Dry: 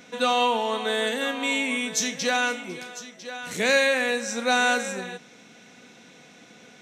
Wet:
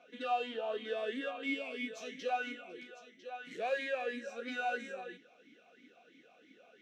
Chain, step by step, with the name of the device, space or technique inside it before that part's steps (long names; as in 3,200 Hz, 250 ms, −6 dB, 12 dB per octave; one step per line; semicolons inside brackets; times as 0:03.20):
talk box (tube saturation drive 22 dB, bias 0.35; formant filter swept between two vowels a-i 3 Hz)
level +1 dB